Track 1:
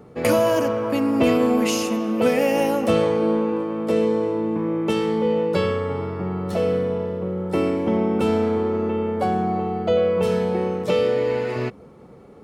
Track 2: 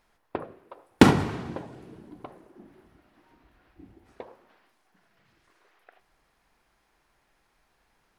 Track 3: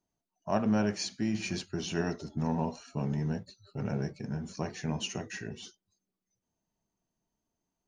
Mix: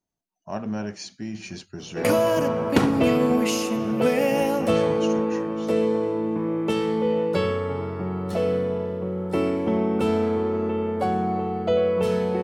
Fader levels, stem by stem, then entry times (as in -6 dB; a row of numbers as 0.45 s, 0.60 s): -2.0 dB, -5.0 dB, -2.0 dB; 1.80 s, 1.75 s, 0.00 s